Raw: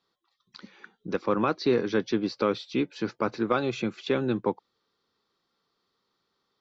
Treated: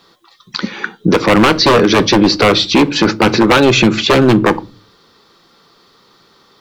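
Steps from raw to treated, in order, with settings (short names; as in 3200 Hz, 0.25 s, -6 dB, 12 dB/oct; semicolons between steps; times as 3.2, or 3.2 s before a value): wavefolder -22 dBFS; on a send at -16 dB: reverb RT60 0.30 s, pre-delay 3 ms; on the sum: maximiser +28 dB; gain -1 dB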